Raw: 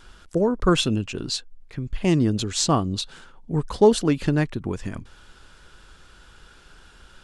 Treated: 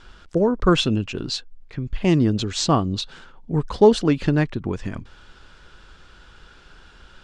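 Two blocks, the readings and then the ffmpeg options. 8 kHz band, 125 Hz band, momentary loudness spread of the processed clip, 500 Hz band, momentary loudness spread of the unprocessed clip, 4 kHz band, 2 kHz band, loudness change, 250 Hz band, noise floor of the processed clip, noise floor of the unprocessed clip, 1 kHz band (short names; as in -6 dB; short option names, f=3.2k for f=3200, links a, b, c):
-3.5 dB, +2.0 dB, 16 LU, +2.0 dB, 16 LU, +1.0 dB, +2.0 dB, +2.0 dB, +2.0 dB, -50 dBFS, -52 dBFS, +2.0 dB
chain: -af "lowpass=5.5k,volume=2dB"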